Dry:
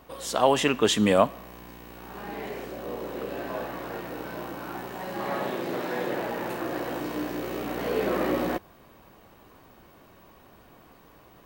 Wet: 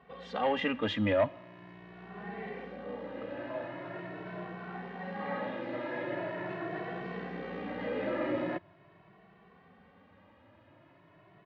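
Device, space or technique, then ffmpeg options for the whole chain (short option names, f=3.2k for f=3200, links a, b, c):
barber-pole flanger into a guitar amplifier: -filter_complex "[0:a]asplit=2[a][b];[b]adelay=2.2,afreqshift=0.42[c];[a][c]amix=inputs=2:normalize=1,asoftclip=type=tanh:threshold=-16.5dB,highpass=82,equalizer=f=100:t=q:w=4:g=8,equalizer=f=180:t=q:w=4:g=8,equalizer=f=630:t=q:w=4:g=4,equalizer=f=1.9k:t=q:w=4:g=7,lowpass=f=3.5k:w=0.5412,lowpass=f=3.5k:w=1.3066,volume=-5dB"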